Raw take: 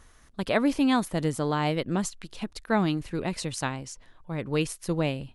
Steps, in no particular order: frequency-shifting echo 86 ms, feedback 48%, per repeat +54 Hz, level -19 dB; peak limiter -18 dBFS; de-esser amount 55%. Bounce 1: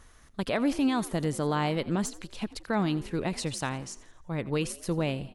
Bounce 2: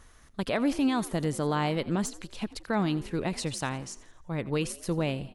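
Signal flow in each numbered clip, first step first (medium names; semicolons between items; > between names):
peak limiter > de-esser > frequency-shifting echo; peak limiter > frequency-shifting echo > de-esser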